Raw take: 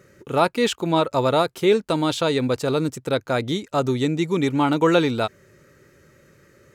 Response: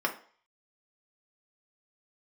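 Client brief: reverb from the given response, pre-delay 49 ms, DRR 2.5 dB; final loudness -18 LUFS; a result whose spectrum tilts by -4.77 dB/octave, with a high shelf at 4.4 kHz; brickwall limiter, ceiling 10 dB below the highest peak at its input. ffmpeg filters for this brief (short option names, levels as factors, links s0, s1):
-filter_complex "[0:a]highshelf=f=4400:g=3.5,alimiter=limit=0.178:level=0:latency=1,asplit=2[s0][s1];[1:a]atrim=start_sample=2205,adelay=49[s2];[s1][s2]afir=irnorm=-1:irlink=0,volume=0.251[s3];[s0][s3]amix=inputs=2:normalize=0,volume=1.88"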